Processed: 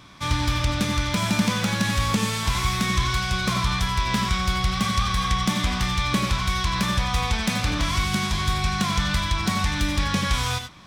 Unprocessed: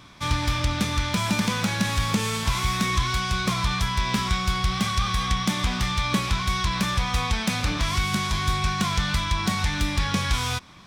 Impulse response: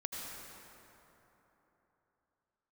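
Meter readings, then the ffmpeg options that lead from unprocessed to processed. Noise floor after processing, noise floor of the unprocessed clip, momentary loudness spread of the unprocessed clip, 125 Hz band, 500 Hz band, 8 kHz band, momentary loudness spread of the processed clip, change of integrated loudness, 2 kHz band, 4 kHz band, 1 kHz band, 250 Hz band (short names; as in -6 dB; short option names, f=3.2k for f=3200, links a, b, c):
-27 dBFS, -29 dBFS, 1 LU, +1.0 dB, +1.5 dB, +1.0 dB, 1 LU, +1.0 dB, +1.0 dB, +1.0 dB, +1.0 dB, +1.5 dB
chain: -filter_complex "[1:a]atrim=start_sample=2205,atrim=end_sample=4410[a];[0:a][a]afir=irnorm=-1:irlink=0,volume=3.5dB"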